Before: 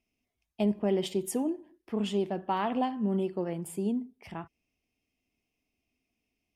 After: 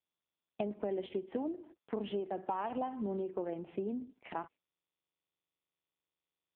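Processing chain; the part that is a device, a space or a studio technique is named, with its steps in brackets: gate -52 dBFS, range -43 dB; voicemail (BPF 320–2700 Hz; compressor 6:1, threshold -40 dBFS, peak gain reduction 14 dB; gain +7 dB; AMR-NB 5.15 kbps 8000 Hz)

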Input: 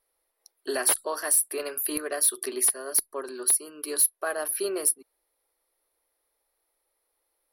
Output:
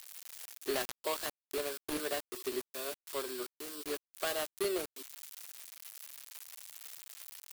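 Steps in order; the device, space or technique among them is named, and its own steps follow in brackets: budget class-D amplifier (switching dead time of 0.23 ms; switching spikes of -22 dBFS); gain -4 dB

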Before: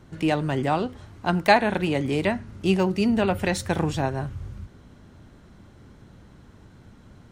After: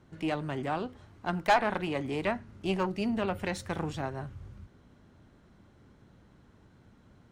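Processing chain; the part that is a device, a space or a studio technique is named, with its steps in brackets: 1.49–2.87 dynamic EQ 980 Hz, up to +7 dB, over -31 dBFS, Q 0.87; tube preamp driven hard (tube stage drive 12 dB, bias 0.55; low shelf 130 Hz -4 dB; high shelf 4600 Hz -5 dB); gain -5 dB

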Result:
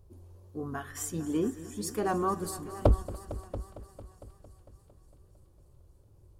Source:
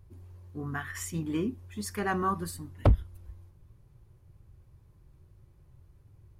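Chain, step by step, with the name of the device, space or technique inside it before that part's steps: multi-head tape echo (multi-head echo 0.227 s, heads all three, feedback 43%, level -18 dB; wow and flutter 47 cents); graphic EQ 125/500/2000/8000 Hz -6/+6/-10/+3 dB; thinning echo 0.289 s, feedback 78%, high-pass 900 Hz, level -21 dB

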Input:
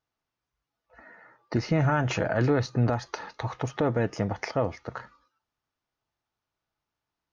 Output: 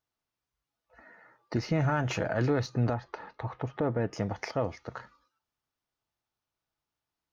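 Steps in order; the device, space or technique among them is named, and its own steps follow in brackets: 2.93–4.13 Bessel low-pass 1800 Hz, order 2; exciter from parts (in parallel at -10 dB: HPF 2200 Hz 12 dB/oct + soft clip -39.5 dBFS, distortion -7 dB); on the sum: gain -3.5 dB

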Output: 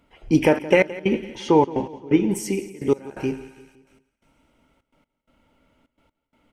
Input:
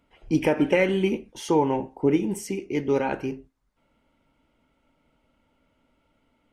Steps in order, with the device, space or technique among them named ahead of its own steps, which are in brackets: 0.84–2.28 LPF 4200 Hz 12 dB/oct; thinning echo 0.113 s, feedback 80%, high-pass 1200 Hz, level -17.5 dB; trance gate with a delay (step gate "xxxxx.x.." 128 bpm -24 dB; feedback echo 0.171 s, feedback 50%, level -18 dB); gain +5 dB

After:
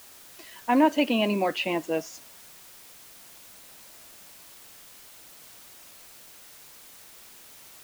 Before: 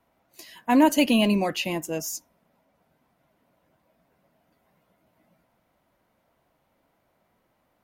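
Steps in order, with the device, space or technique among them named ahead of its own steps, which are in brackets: shortwave radio (BPF 270–3000 Hz; tremolo 0.51 Hz, depth 41%; white noise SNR 18 dB); gain +3.5 dB

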